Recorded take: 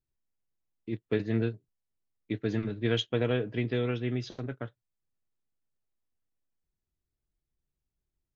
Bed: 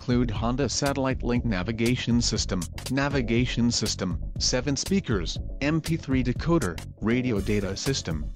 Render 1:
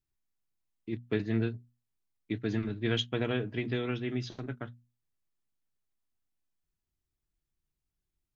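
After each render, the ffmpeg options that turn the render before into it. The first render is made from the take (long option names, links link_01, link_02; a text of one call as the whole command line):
ffmpeg -i in.wav -af "equalizer=frequency=510:width_type=o:width=0.45:gain=-7,bandreject=frequency=60:width_type=h:width=6,bandreject=frequency=120:width_type=h:width=6,bandreject=frequency=180:width_type=h:width=6,bandreject=frequency=240:width_type=h:width=6" out.wav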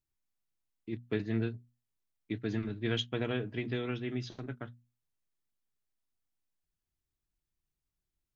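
ffmpeg -i in.wav -af "volume=-2.5dB" out.wav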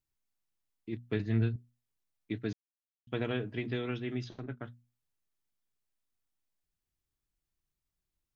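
ffmpeg -i in.wav -filter_complex "[0:a]asettb=1/sr,asplit=3[link_01][link_02][link_03];[link_01]atrim=end=0.944[link_04];[link_02]atrim=start=0.94:end=1.56,asetpts=PTS-STARTPTS,afade=type=in:duration=0.004:curve=qsin,afade=type=out:start_time=0.616:duration=0.004:curve=qsin,asubboost=boost=11.5:cutoff=190[link_05];[link_03]atrim=start=1.556[link_06];[link_04][link_05]acrossfade=duration=0.004:curve1=hsin:curve2=qsin[link_07];[link_07][link_06]acrossfade=duration=0.004:curve1=qsin:curve2=hsin,asettb=1/sr,asplit=3[link_08][link_09][link_10];[link_08]atrim=end=4.244[link_11];[link_09]atrim=start=4.24:end=4.64,asetpts=PTS-STARTPTS,afade=type=in:duration=0.004:curve=qsin,afade=type=out:start_time=0.396:duration=0.004:curve=qsin,highshelf=frequency=4100:gain=-9[link_12];[link_10]atrim=start=4.636[link_13];[link_11][link_12]acrossfade=duration=0.004:curve1=hsin:curve2=qsin[link_14];[link_14][link_13]acrossfade=duration=0.004:curve1=qsin:curve2=hsin,asplit=3[link_15][link_16][link_17];[link_15]atrim=end=2.53,asetpts=PTS-STARTPTS,afade=type=out:start_time=2.526:duration=0.004:curve=hsin[link_18];[link_16]atrim=start=2.53:end=3.07,asetpts=PTS-STARTPTS,volume=0[link_19];[link_17]atrim=start=3.07,asetpts=PTS-STARTPTS,afade=type=in:duration=0.004:curve=hsin[link_20];[link_18][link_19][link_20]concat=n=3:v=0:a=1" out.wav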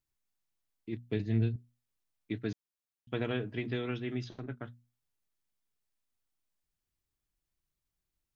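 ffmpeg -i in.wav -filter_complex "[0:a]asettb=1/sr,asplit=3[link_01][link_02][link_03];[link_01]atrim=end=1.034[link_04];[link_02]atrim=start=1.03:end=1.54,asetpts=PTS-STARTPTS,afade=type=in:duration=0.004:curve=qsin,afade=type=out:start_time=0.506:duration=0.004:curve=qsin,equalizer=frequency=1300:width_type=o:width=0.86:gain=-10.5[link_05];[link_03]atrim=start=1.536[link_06];[link_04][link_05]acrossfade=duration=0.004:curve1=hsin:curve2=qsin[link_07];[link_07][link_06]acrossfade=duration=0.004:curve1=qsin:curve2=hsin" out.wav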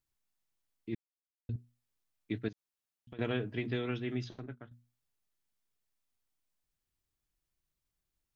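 ffmpeg -i in.wav -filter_complex "[0:a]asettb=1/sr,asplit=3[link_01][link_02][link_03];[link_01]atrim=end=2.484[link_04];[link_02]atrim=start=2.48:end=3.19,asetpts=PTS-STARTPTS,afade=type=in:duration=0.004:curve=qsin,afade=type=out:start_time=0.706:duration=0.004:curve=qsin,acompressor=threshold=-45dB:ratio=12:attack=3.2:release=140:knee=1:detection=peak[link_05];[link_03]atrim=start=3.186[link_06];[link_04][link_05]acrossfade=duration=0.004:curve1=hsin:curve2=qsin[link_07];[link_07][link_06]acrossfade=duration=0.004:curve1=qsin:curve2=hsin,asplit=4[link_08][link_09][link_10][link_11];[link_08]atrim=end=0.95,asetpts=PTS-STARTPTS,afade=type=out:start_time=0.946:duration=0.004:curve=hsin[link_12];[link_09]atrim=start=0.95:end=1.49,asetpts=PTS-STARTPTS,volume=0[link_13];[link_10]atrim=start=1.49:end=4.71,asetpts=PTS-STARTPTS,afade=type=in:duration=0.004:curve=hsin,afade=type=out:start_time=2.78:duration=0.44:silence=0.251189[link_14];[link_11]atrim=start=4.71,asetpts=PTS-STARTPTS,afade=type=in:duration=0.004:curve=hsin:silence=0.251189[link_15];[link_12][link_13][link_14][link_15]concat=n=4:v=0:a=1" out.wav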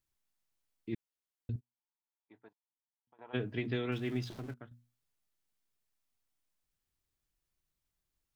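ffmpeg -i in.wav -filter_complex "[0:a]asplit=3[link_01][link_02][link_03];[link_01]afade=type=out:start_time=1.59:duration=0.02[link_04];[link_02]bandpass=frequency=900:width_type=q:width=6.4,afade=type=in:start_time=1.59:duration=0.02,afade=type=out:start_time=3.33:duration=0.02[link_05];[link_03]afade=type=in:start_time=3.33:duration=0.02[link_06];[link_04][link_05][link_06]amix=inputs=3:normalize=0,asettb=1/sr,asplit=3[link_07][link_08][link_09];[link_07]atrim=end=3.924[link_10];[link_08]atrim=start=3.92:end=4.54,asetpts=PTS-STARTPTS,afade=type=in:duration=0.004:curve=qsin,afade=type=out:start_time=0.616:duration=0.004:curve=qsin,aeval=exprs='val(0)+0.5*0.00355*sgn(val(0))':channel_layout=same[link_11];[link_09]atrim=start=4.536[link_12];[link_10][link_11]acrossfade=duration=0.004:curve1=hsin:curve2=qsin[link_13];[link_13][link_12]acrossfade=duration=0.004:curve1=qsin:curve2=hsin" out.wav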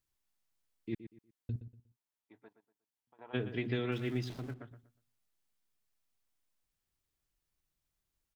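ffmpeg -i in.wav -filter_complex "[0:a]asplit=2[link_01][link_02];[link_02]adelay=120,lowpass=frequency=2900:poles=1,volume=-12dB,asplit=2[link_03][link_04];[link_04]adelay=120,lowpass=frequency=2900:poles=1,volume=0.29,asplit=2[link_05][link_06];[link_06]adelay=120,lowpass=frequency=2900:poles=1,volume=0.29[link_07];[link_01][link_03][link_05][link_07]amix=inputs=4:normalize=0" out.wav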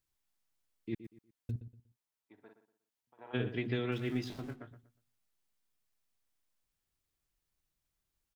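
ffmpeg -i in.wav -filter_complex "[0:a]asettb=1/sr,asplit=3[link_01][link_02][link_03];[link_01]atrim=end=1.044[link_04];[link_02]atrim=start=1.04:end=1.51,asetpts=PTS-STARTPTS,afade=type=in:duration=0.004:curve=qsin,afade=type=out:start_time=0.466:duration=0.004:curve=qsin,acrusher=bits=8:mode=log:mix=0:aa=0.000001[link_05];[link_03]atrim=start=1.506[link_06];[link_04][link_05]acrossfade=duration=0.004:curve1=hsin:curve2=qsin[link_07];[link_07][link_06]acrossfade=duration=0.004:curve1=qsin:curve2=hsin,asplit=3[link_08][link_09][link_10];[link_08]afade=type=out:start_time=2.37:duration=0.02[link_11];[link_09]asplit=2[link_12][link_13];[link_13]adelay=49,volume=-5dB[link_14];[link_12][link_14]amix=inputs=2:normalize=0,afade=type=in:start_time=2.37:duration=0.02,afade=type=out:start_time=3.47:duration=0.02[link_15];[link_10]afade=type=in:start_time=3.47:duration=0.02[link_16];[link_11][link_15][link_16]amix=inputs=3:normalize=0,asettb=1/sr,asplit=3[link_17][link_18][link_19];[link_17]atrim=end=4.084[link_20];[link_18]atrim=start=4.08:end=4.76,asetpts=PTS-STARTPTS,afade=type=in:duration=0.004:curve=qsin,afade=type=out:start_time=0.676:duration=0.004:curve=qsin,asplit=2[link_21][link_22];[link_22]adelay=20,volume=-7.5dB[link_23];[link_21][link_23]amix=inputs=2:normalize=0,atrim=end_sample=29988[link_24];[link_19]atrim=start=4.756[link_25];[link_20][link_24]acrossfade=duration=0.004:curve1=hsin:curve2=qsin[link_26];[link_26][link_25]acrossfade=duration=0.004:curve1=qsin:curve2=hsin" out.wav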